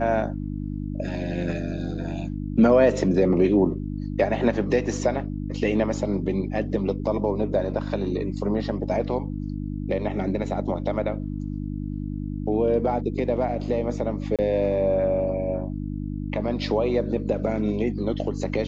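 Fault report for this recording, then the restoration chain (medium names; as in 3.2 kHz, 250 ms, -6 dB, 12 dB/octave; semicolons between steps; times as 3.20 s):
hum 50 Hz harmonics 6 -30 dBFS
14.36–14.39 s: dropout 27 ms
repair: de-hum 50 Hz, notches 6; interpolate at 14.36 s, 27 ms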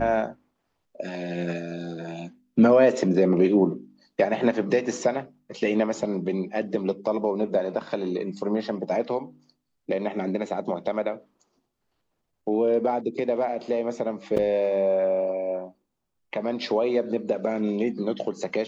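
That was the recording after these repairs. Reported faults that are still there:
nothing left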